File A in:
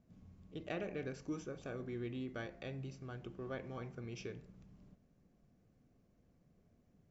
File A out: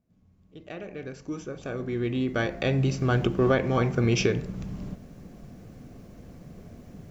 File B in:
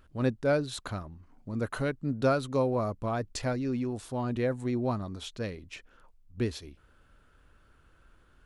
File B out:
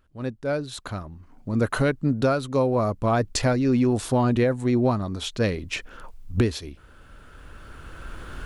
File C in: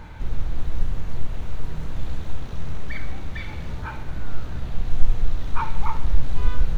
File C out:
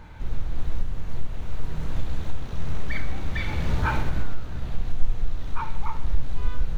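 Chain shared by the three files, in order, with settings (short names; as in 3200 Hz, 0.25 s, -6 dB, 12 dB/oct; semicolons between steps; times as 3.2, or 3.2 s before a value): recorder AGC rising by 9.3 dB/s; gain -5 dB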